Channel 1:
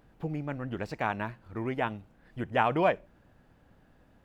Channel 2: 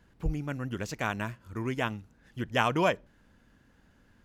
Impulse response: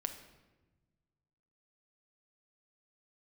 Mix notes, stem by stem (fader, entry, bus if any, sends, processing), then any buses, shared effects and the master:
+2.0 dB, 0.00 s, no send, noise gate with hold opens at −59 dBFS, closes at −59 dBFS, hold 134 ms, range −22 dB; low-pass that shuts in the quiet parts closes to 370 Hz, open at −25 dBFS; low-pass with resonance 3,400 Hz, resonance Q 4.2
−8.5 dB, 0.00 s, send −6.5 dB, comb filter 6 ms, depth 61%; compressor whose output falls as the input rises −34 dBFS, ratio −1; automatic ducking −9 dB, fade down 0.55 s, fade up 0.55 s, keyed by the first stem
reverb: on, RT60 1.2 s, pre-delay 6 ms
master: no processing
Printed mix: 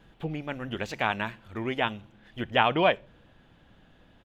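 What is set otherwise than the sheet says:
stem 1: missing low-pass that shuts in the quiet parts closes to 370 Hz, open at −25 dBFS
stem 2: polarity flipped

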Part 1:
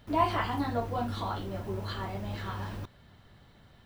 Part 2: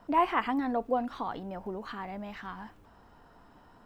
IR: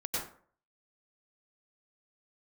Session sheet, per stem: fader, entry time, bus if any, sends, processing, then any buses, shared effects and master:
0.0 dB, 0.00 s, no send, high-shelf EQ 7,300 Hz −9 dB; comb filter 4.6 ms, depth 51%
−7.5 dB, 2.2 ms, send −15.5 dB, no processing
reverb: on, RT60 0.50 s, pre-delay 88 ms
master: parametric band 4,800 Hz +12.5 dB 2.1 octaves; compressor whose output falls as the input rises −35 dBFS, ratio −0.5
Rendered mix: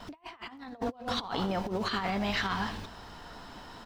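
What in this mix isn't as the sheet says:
stem 1 0.0 dB → −8.5 dB
stem 2 −7.5 dB → +1.5 dB

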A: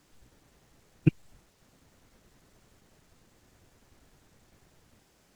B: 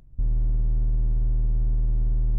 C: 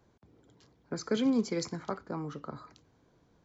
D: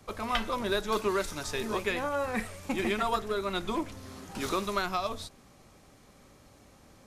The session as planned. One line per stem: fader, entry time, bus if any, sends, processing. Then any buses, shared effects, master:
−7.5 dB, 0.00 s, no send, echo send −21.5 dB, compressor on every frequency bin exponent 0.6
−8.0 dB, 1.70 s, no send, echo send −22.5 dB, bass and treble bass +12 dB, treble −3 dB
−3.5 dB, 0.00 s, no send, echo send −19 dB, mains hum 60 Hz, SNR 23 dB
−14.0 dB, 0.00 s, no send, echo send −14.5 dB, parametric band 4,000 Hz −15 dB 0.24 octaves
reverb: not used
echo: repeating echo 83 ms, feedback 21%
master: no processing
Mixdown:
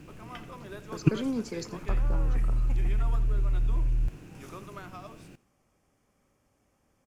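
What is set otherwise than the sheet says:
stem A −7.5 dB → −1.0 dB
stem B −8.0 dB → −15.0 dB

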